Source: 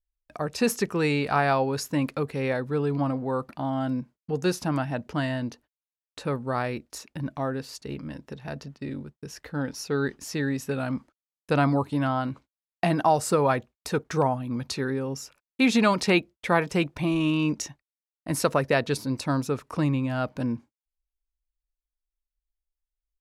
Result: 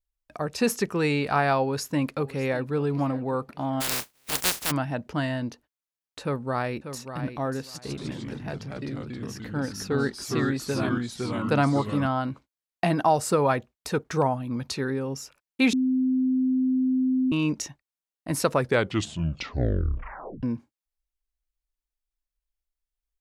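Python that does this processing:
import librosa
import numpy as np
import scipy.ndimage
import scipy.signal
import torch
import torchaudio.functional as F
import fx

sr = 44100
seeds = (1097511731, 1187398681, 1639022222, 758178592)

y = fx.echo_throw(x, sr, start_s=1.59, length_s=1.16, ms=600, feedback_pct=35, wet_db=-18.0)
y = fx.spec_flatten(y, sr, power=0.13, at=(3.8, 4.7), fade=0.02)
y = fx.echo_throw(y, sr, start_s=6.22, length_s=0.97, ms=590, feedback_pct=20, wet_db=-9.5)
y = fx.echo_pitch(y, sr, ms=142, semitones=-2, count=3, db_per_echo=-3.0, at=(7.69, 12.06))
y = fx.edit(y, sr, fx.bleep(start_s=15.73, length_s=1.59, hz=258.0, db=-20.0),
    fx.tape_stop(start_s=18.51, length_s=1.92), tone=tone)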